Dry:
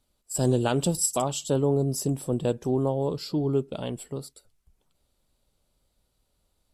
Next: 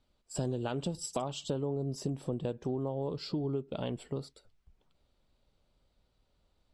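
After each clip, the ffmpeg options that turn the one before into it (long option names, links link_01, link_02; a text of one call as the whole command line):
ffmpeg -i in.wav -af "lowpass=4300,acompressor=threshold=-31dB:ratio=6" out.wav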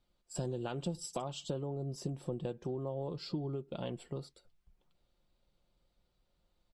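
ffmpeg -i in.wav -af "aecho=1:1:5.7:0.37,volume=-4dB" out.wav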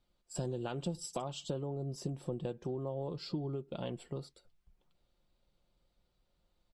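ffmpeg -i in.wav -af anull out.wav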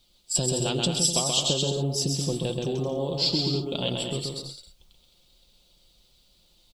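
ffmpeg -i in.wav -af "highshelf=frequency=2400:width_type=q:width=1.5:gain=11.5,aecho=1:1:130|214.5|269.4|305.1|328.3:0.631|0.398|0.251|0.158|0.1,volume=8.5dB" out.wav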